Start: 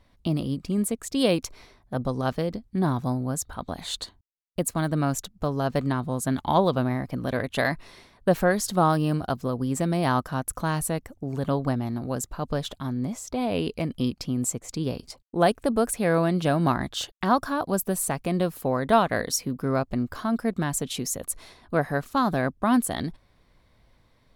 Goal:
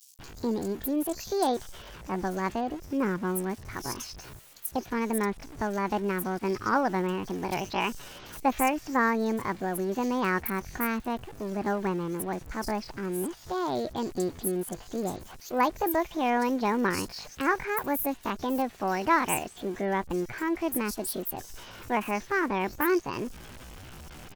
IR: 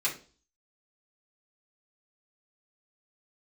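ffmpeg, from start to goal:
-filter_complex "[0:a]aeval=exprs='val(0)+0.5*0.0188*sgn(val(0))':channel_layout=same,asetrate=64194,aresample=44100,atempo=0.686977,acrossover=split=4900[link_01][link_02];[link_01]adelay=190[link_03];[link_03][link_02]amix=inputs=2:normalize=0,volume=-4.5dB"

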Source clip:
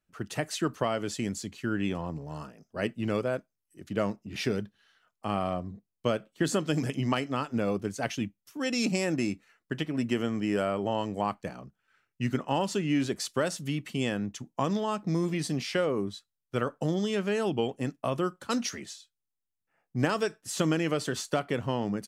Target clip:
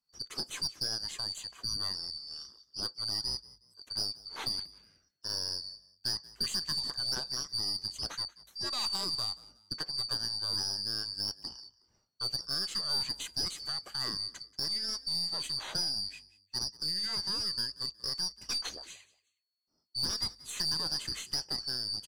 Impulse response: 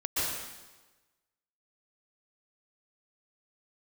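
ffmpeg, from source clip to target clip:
-filter_complex "[0:a]afftfilt=real='real(if(lt(b,272),68*(eq(floor(b/68),0)*1+eq(floor(b/68),1)*2+eq(floor(b/68),2)*3+eq(floor(b/68),3)*0)+mod(b,68),b),0)':imag='imag(if(lt(b,272),68*(eq(floor(b/68),0)*1+eq(floor(b/68),1)*2+eq(floor(b/68),2)*3+eq(floor(b/68),3)*0)+mod(b,68),b),0)':win_size=2048:overlap=0.75,aeval=exprs='(tanh(11.2*val(0)+0.5)-tanh(0.5))/11.2':channel_layout=same,asplit=3[link_01][link_02][link_03];[link_02]adelay=183,afreqshift=48,volume=-20.5dB[link_04];[link_03]adelay=366,afreqshift=96,volume=-30.7dB[link_05];[link_01][link_04][link_05]amix=inputs=3:normalize=0,volume=-3dB"

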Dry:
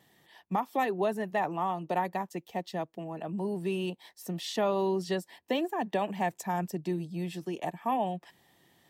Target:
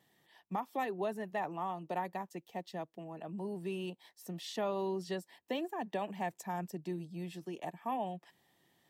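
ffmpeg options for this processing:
ffmpeg -i in.wav -af "equalizer=frequency=67:width_type=o:width=0.77:gain=-6,volume=-7dB" out.wav

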